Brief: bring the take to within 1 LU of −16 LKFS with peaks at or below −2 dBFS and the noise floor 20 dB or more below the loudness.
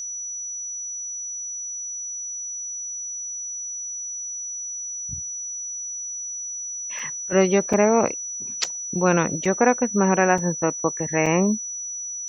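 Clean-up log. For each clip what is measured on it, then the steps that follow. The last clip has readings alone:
number of dropouts 6; longest dropout 4.3 ms; interfering tone 5,900 Hz; level of the tone −29 dBFS; integrated loudness −24.0 LKFS; sample peak −4.0 dBFS; target loudness −16.0 LKFS
→ repair the gap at 0:06.99/0:07.73/0:08.64/0:09.45/0:10.38/0:11.26, 4.3 ms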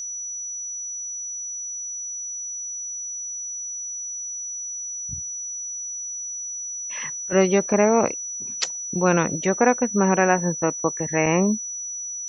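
number of dropouts 0; interfering tone 5,900 Hz; level of the tone −29 dBFS
→ notch filter 5,900 Hz, Q 30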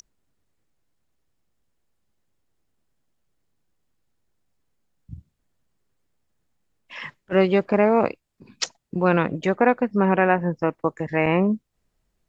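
interfering tone none found; integrated loudness −21.5 LKFS; sample peak −4.0 dBFS; target loudness −16.0 LKFS
→ level +5.5 dB
brickwall limiter −2 dBFS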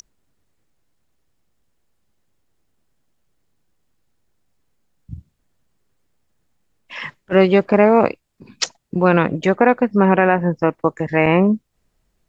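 integrated loudness −16.5 LKFS; sample peak −2.0 dBFS; background noise floor −69 dBFS

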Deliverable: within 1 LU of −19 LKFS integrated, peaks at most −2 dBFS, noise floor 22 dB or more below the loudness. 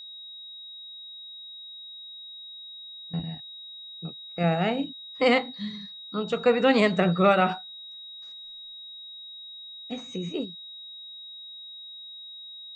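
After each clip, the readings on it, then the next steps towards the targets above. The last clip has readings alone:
interfering tone 3,800 Hz; level of the tone −40 dBFS; integrated loudness −26.0 LKFS; sample peak −8.5 dBFS; target loudness −19.0 LKFS
→ notch filter 3,800 Hz, Q 30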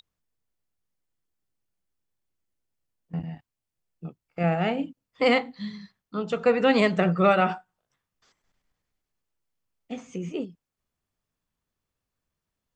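interfering tone none found; integrated loudness −24.5 LKFS; sample peak −8.5 dBFS; target loudness −19.0 LKFS
→ level +5.5 dB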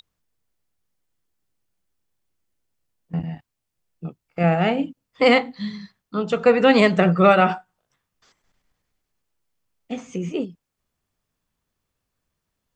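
integrated loudness −19.0 LKFS; sample peak −3.0 dBFS; background noise floor −81 dBFS

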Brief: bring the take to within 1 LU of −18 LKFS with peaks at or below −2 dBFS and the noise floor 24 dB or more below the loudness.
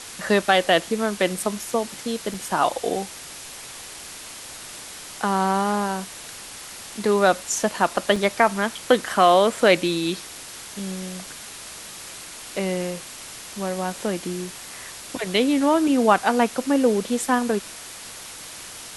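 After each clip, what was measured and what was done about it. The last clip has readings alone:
number of dropouts 2; longest dropout 3.9 ms; background noise floor −39 dBFS; target noise floor −46 dBFS; integrated loudness −22.0 LKFS; sample peak −3.0 dBFS; target loudness −18.0 LKFS
→ repair the gap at 0:02.34/0:08.16, 3.9 ms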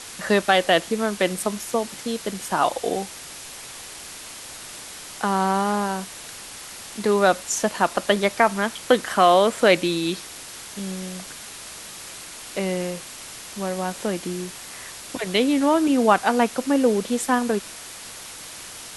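number of dropouts 0; background noise floor −39 dBFS; target noise floor −46 dBFS
→ broadband denoise 7 dB, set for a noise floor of −39 dBFS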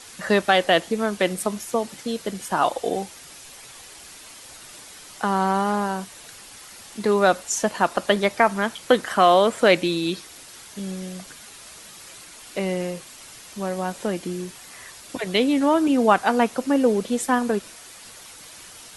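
background noise floor −44 dBFS; target noise floor −46 dBFS
→ broadband denoise 6 dB, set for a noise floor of −44 dBFS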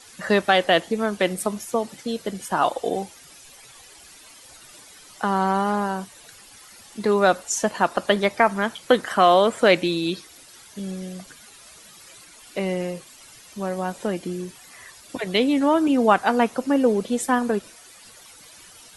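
background noise floor −48 dBFS; integrated loudness −22.0 LKFS; sample peak −3.0 dBFS; target loudness −18.0 LKFS
→ level +4 dB
brickwall limiter −2 dBFS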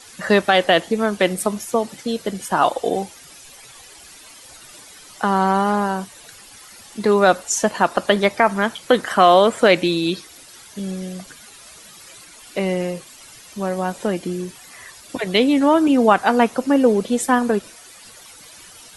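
integrated loudness −18.5 LKFS; sample peak −2.0 dBFS; background noise floor −44 dBFS

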